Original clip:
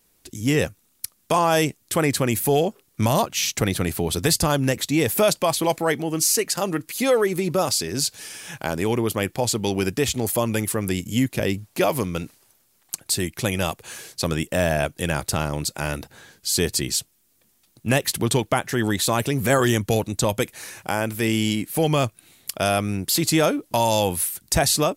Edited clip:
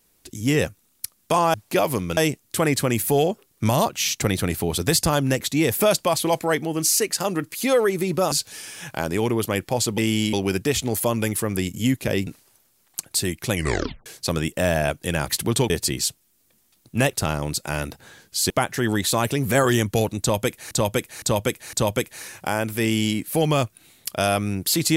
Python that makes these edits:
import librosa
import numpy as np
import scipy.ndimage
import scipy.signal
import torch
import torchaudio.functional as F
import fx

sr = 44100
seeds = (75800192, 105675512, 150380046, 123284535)

y = fx.edit(x, sr, fx.cut(start_s=7.69, length_s=0.3),
    fx.move(start_s=11.59, length_s=0.63, to_s=1.54),
    fx.tape_stop(start_s=13.49, length_s=0.52),
    fx.swap(start_s=15.24, length_s=1.37, other_s=18.04, other_length_s=0.41),
    fx.repeat(start_s=20.15, length_s=0.51, count=4),
    fx.duplicate(start_s=21.24, length_s=0.35, to_s=9.65), tone=tone)